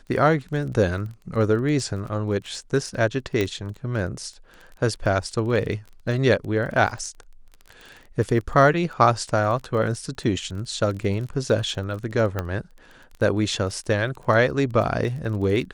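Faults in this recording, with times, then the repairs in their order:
crackle 21/s -32 dBFS
3.41 pop -10 dBFS
12.39 pop -12 dBFS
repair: de-click

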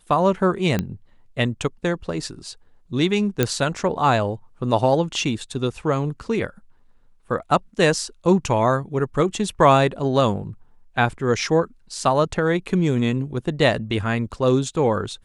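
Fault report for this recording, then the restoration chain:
0.79 pop -10 dBFS
3.43 pop -4 dBFS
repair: de-click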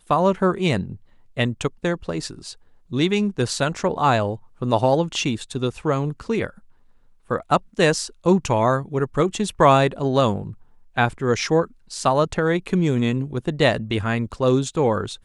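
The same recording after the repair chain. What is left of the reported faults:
none

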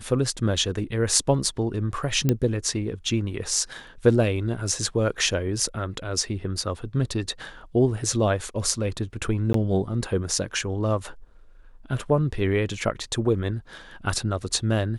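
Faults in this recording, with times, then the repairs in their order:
2.29 pop -8 dBFS
9.53–9.54 gap 13 ms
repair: de-click; interpolate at 9.53, 13 ms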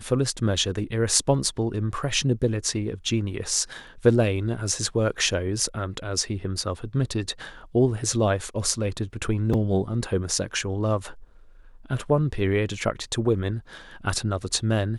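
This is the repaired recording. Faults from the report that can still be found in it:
none

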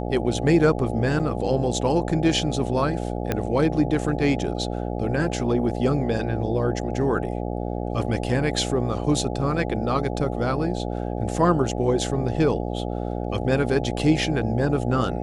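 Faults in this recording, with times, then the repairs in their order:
buzz 60 Hz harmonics 14 -28 dBFS
1.19–1.2 gap 6.4 ms
3.32 pop -10 dBFS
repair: de-click; de-hum 60 Hz, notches 14; interpolate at 1.19, 6.4 ms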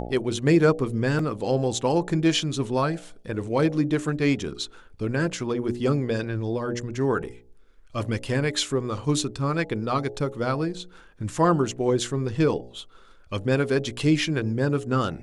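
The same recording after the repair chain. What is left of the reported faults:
3.32 pop

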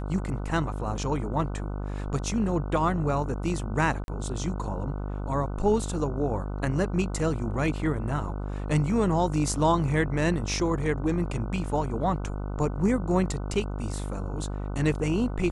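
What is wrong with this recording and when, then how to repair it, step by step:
buzz 50 Hz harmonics 30 -32 dBFS
4.04–4.08 gap 41 ms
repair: de-hum 50 Hz, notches 30; interpolate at 4.04, 41 ms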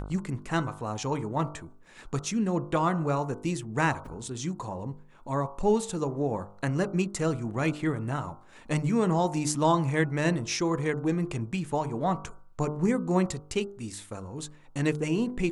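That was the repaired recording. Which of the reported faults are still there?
none

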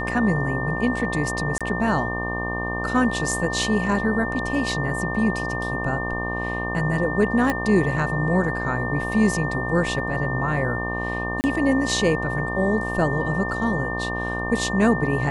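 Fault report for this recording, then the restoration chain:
buzz 60 Hz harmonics 20 -29 dBFS
tone 1800 Hz -28 dBFS
1.58–1.61 gap 26 ms
7.5 pop -9 dBFS
11.41–11.44 gap 29 ms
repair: de-click; de-hum 60 Hz, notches 20; notch 1800 Hz, Q 30; interpolate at 1.58, 26 ms; interpolate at 11.41, 29 ms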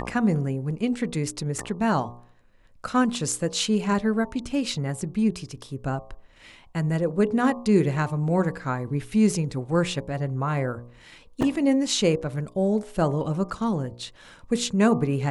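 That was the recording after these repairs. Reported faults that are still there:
none

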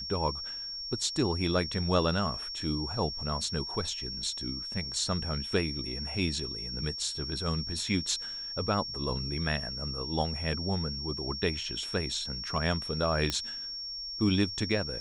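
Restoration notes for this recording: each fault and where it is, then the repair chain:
tone 5500 Hz -36 dBFS
13.3 pop -14 dBFS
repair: de-click; notch 5500 Hz, Q 30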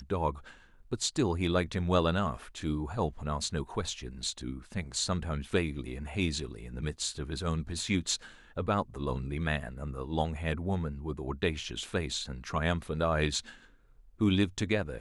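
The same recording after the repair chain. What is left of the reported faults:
none

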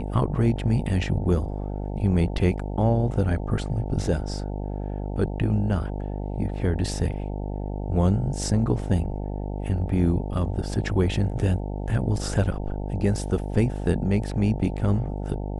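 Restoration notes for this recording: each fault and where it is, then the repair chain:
buzz 50 Hz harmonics 18 -30 dBFS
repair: de-hum 50 Hz, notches 18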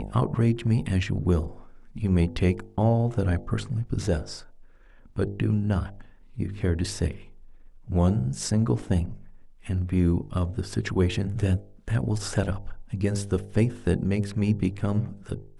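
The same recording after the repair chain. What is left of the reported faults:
none

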